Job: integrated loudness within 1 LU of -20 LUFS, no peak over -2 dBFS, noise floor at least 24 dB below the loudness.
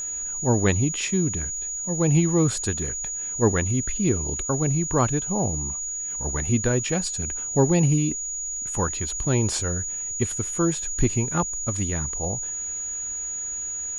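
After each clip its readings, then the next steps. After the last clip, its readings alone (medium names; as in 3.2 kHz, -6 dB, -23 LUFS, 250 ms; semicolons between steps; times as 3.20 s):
tick rate 51 per s; steady tone 6.8 kHz; tone level -28 dBFS; loudness -24.0 LUFS; peak level -7.5 dBFS; loudness target -20.0 LUFS
-> de-click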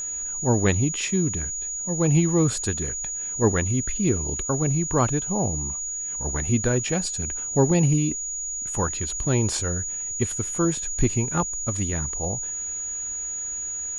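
tick rate 0.071 per s; steady tone 6.8 kHz; tone level -28 dBFS
-> band-stop 6.8 kHz, Q 30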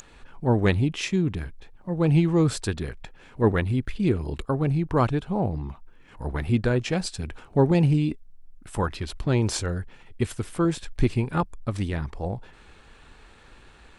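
steady tone not found; loudness -25.5 LUFS; peak level -8.0 dBFS; loudness target -20.0 LUFS
-> trim +5.5 dB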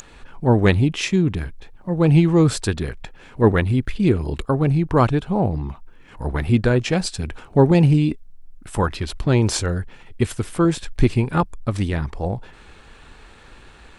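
loudness -20.0 LUFS; peak level -2.5 dBFS; noise floor -46 dBFS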